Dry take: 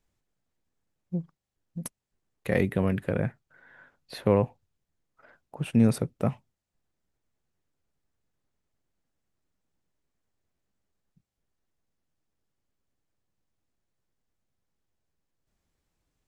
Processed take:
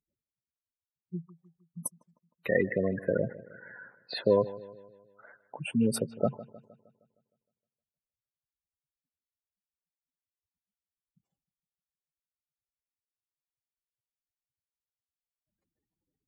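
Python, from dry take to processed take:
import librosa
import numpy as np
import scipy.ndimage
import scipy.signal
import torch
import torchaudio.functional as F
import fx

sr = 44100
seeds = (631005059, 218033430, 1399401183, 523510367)

p1 = fx.spec_gate(x, sr, threshold_db=-15, keep='strong')
p2 = fx.highpass(p1, sr, hz=710.0, slope=6)
p3 = fx.rider(p2, sr, range_db=10, speed_s=0.5)
p4 = p2 + (p3 * librosa.db_to_amplitude(1.5))
y = fx.echo_bbd(p4, sr, ms=155, stages=4096, feedback_pct=50, wet_db=-17.5)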